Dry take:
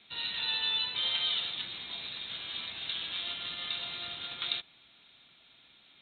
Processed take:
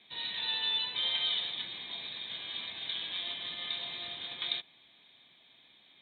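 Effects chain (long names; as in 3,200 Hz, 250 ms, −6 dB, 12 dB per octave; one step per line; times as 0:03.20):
notch comb filter 1,400 Hz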